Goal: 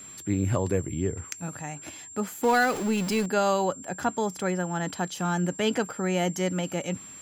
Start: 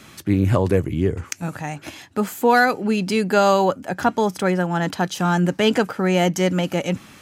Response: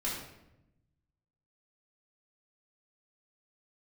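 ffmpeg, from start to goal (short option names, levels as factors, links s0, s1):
-filter_complex "[0:a]asettb=1/sr,asplit=3[s0][s1][s2];[s0]atrim=end=2.434[s3];[s1]atrim=start=2.43:end=3.26,asetpts=PTS-STARTPTS,afade=t=in:d=0.004:c=qsin,afade=t=out:st=0.826:d=0.004:c=qsin,aeval=exprs='val(0)+0.5*0.0794*sgn(val(0))':c=same[s4];[s2]atrim=start=3.256[s5];[s3][s4]acrossfade=d=0.004:c1=hsin:c2=qsin[s6];[s6][s5]acrossfade=d=0.004:c1=qsin:c2=hsin,aeval=exprs='val(0)+0.02*sin(2*PI*7400*n/s)':c=same,volume=0.398"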